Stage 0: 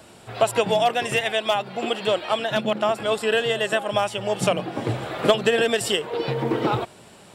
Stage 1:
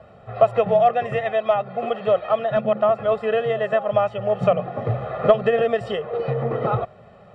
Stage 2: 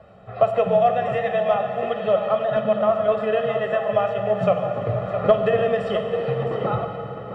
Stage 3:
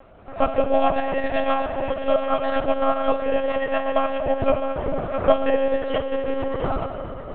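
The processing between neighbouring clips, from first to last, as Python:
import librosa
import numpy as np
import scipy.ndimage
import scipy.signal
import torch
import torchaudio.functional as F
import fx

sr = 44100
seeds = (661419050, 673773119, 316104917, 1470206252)

y1 = scipy.signal.sosfilt(scipy.signal.butter(2, 1400.0, 'lowpass', fs=sr, output='sos'), x)
y1 = y1 + 0.84 * np.pad(y1, (int(1.6 * sr / 1000.0), 0))[:len(y1)]
y2 = y1 + 10.0 ** (-11.0 / 20.0) * np.pad(y1, (int(661 * sr / 1000.0), 0))[:len(y1)]
y2 = fx.rev_fdn(y2, sr, rt60_s=3.1, lf_ratio=1.25, hf_ratio=0.95, size_ms=31.0, drr_db=5.0)
y2 = y2 * librosa.db_to_amplitude(-2.0)
y3 = fx.lpc_monotone(y2, sr, seeds[0], pitch_hz=270.0, order=10)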